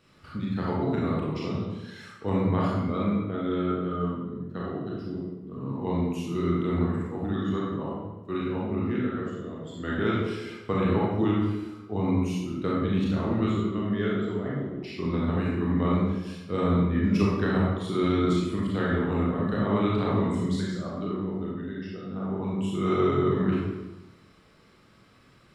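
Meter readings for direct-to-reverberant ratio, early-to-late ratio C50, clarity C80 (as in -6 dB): -6.0 dB, -1.5 dB, 2.0 dB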